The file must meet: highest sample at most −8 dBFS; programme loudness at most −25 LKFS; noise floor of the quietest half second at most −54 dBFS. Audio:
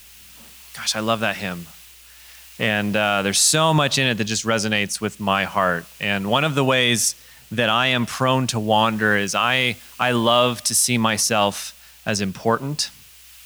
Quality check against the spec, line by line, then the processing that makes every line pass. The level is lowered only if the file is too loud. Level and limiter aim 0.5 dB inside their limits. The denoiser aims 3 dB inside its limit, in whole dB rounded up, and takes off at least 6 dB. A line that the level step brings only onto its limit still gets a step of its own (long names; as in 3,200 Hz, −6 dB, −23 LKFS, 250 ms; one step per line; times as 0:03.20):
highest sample −5.5 dBFS: out of spec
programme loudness −19.5 LKFS: out of spec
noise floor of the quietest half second −46 dBFS: out of spec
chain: broadband denoise 6 dB, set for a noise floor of −46 dBFS
level −6 dB